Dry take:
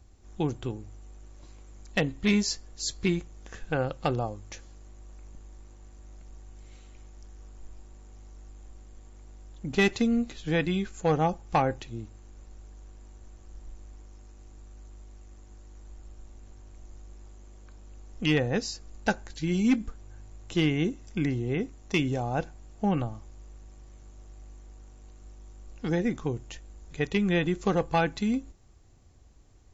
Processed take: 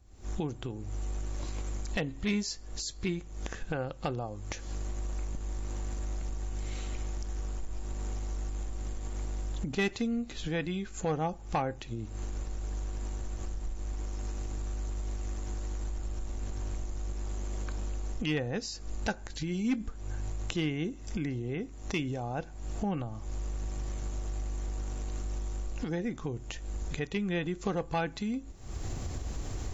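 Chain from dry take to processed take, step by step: recorder AGC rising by 69 dB/s; trim -6.5 dB

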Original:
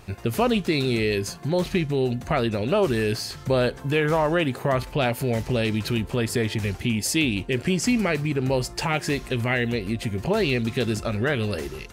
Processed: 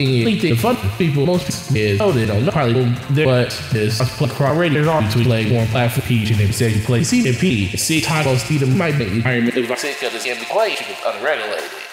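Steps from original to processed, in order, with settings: slices played last to first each 250 ms, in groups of 4; de-hum 109.2 Hz, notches 39; high-pass sweep 100 Hz -> 680 Hz, 9.20–9.90 s; feedback echo behind a high-pass 63 ms, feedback 83%, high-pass 1.5 kHz, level -9.5 dB; in parallel at -2 dB: peak limiter -19 dBFS, peak gain reduction 10 dB; on the sum: trim +2.5 dB

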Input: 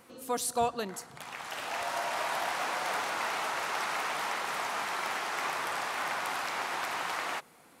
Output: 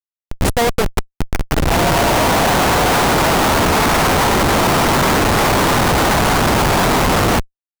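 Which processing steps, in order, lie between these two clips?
level rider gain up to 14 dB; Schmitt trigger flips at -18 dBFS; trim +7 dB

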